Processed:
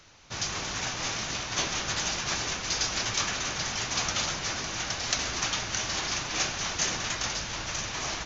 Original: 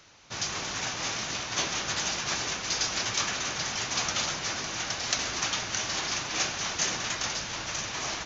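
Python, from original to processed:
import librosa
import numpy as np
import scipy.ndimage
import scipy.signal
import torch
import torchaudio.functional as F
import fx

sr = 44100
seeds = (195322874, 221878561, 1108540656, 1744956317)

y = fx.low_shelf(x, sr, hz=68.0, db=11.5)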